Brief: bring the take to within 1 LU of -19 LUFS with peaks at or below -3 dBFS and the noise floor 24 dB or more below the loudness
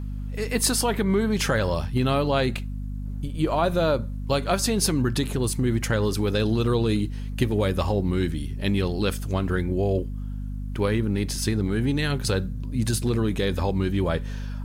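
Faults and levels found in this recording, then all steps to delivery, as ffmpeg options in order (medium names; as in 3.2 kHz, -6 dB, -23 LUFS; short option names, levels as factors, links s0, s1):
hum 50 Hz; highest harmonic 250 Hz; hum level -29 dBFS; loudness -25.0 LUFS; peak level -7.5 dBFS; loudness target -19.0 LUFS
-> -af "bandreject=f=50:t=h:w=6,bandreject=f=100:t=h:w=6,bandreject=f=150:t=h:w=6,bandreject=f=200:t=h:w=6,bandreject=f=250:t=h:w=6"
-af "volume=2,alimiter=limit=0.708:level=0:latency=1"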